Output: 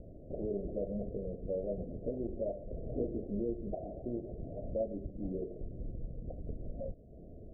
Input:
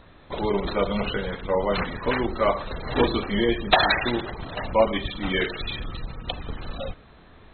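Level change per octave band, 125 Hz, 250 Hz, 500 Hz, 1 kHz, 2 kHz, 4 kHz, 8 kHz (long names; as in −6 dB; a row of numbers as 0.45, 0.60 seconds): −10.0 dB, −11.0 dB, −12.5 dB, −29.0 dB, below −40 dB, below −40 dB, can't be measured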